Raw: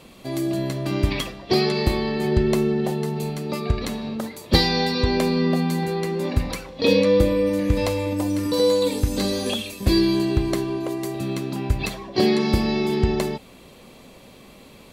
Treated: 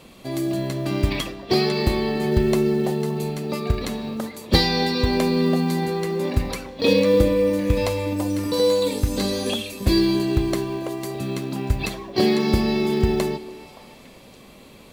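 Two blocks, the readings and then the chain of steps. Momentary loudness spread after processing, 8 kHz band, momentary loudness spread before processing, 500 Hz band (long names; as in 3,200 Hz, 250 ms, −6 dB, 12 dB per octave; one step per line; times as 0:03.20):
9 LU, +0.5 dB, 9 LU, +0.5 dB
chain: floating-point word with a short mantissa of 4 bits
echo through a band-pass that steps 285 ms, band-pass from 340 Hz, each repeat 1.4 octaves, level −11.5 dB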